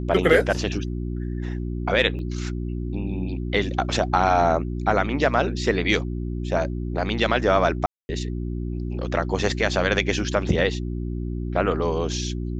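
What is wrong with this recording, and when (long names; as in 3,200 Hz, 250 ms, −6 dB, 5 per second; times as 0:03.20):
mains hum 60 Hz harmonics 6 −28 dBFS
0:02.19: drop-out 2.7 ms
0:07.86–0:08.09: drop-out 230 ms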